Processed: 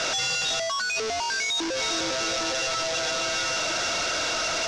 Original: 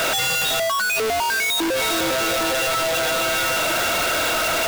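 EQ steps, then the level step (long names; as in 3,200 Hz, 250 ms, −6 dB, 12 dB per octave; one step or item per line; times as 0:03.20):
transistor ladder low-pass 6,400 Hz, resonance 60%
+3.0 dB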